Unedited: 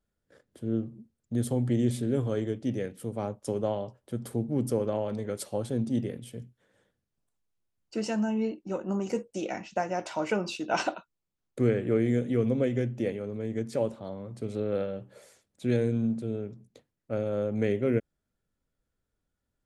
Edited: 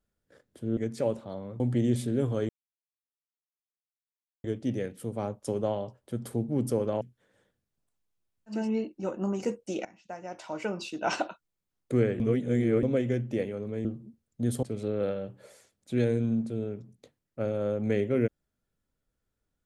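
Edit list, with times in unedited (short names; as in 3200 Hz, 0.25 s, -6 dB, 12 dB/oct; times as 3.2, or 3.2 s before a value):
0.77–1.55 swap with 13.52–14.35
2.44 insert silence 1.95 s
5.01–6.41 cut
7.98–8.25 cut, crossfade 0.24 s
9.52–10.96 fade in, from -20.5 dB
11.87–12.5 reverse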